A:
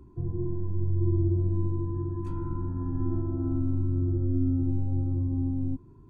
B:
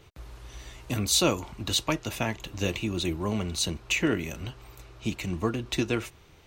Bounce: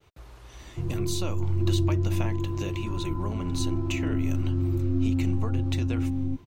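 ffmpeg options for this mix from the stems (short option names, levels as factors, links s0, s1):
-filter_complex "[0:a]adelay=600,volume=1.06[s0];[1:a]agate=range=0.0224:threshold=0.00282:ratio=3:detection=peak,acompressor=threshold=0.0282:ratio=4,volume=0.708[s1];[s0][s1]amix=inputs=2:normalize=0,equalizer=f=830:w=0.61:g=3.5"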